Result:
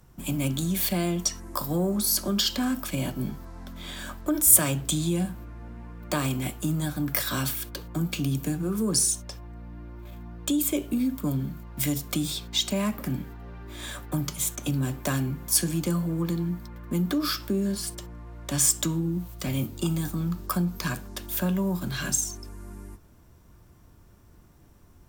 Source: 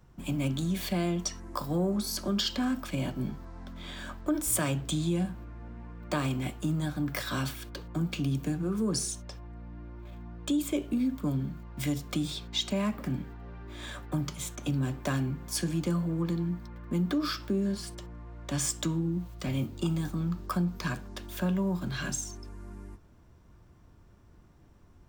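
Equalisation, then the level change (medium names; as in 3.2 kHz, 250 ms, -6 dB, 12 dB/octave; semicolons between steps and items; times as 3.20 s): peaking EQ 13 kHz +14.5 dB 1.2 oct; +2.5 dB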